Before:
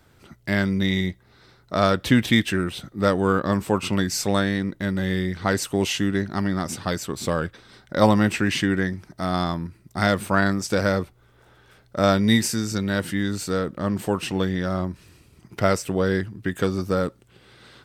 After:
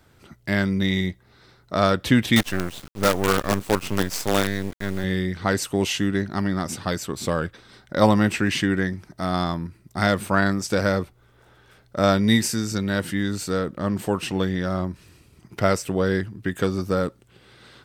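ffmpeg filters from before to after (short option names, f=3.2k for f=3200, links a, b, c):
-filter_complex "[0:a]asettb=1/sr,asplit=3[a][b][c];[a]atrim=end=2.364[d];[b]atrim=start=2.36:end=5.04,asetpts=PTS-STARTPTS,afade=t=in:d=0.004:c=qsin,afade=t=out:st=2.676:d=0.004:c=qsin,acrusher=bits=4:dc=4:mix=0:aa=0.000001[e];[c]atrim=start=5.036[f];[d][e]acrossfade=d=0.004:c1=hsin:c2=qsin[g];[g][f]acrossfade=d=0.004:c1=qsin:c2=hsin"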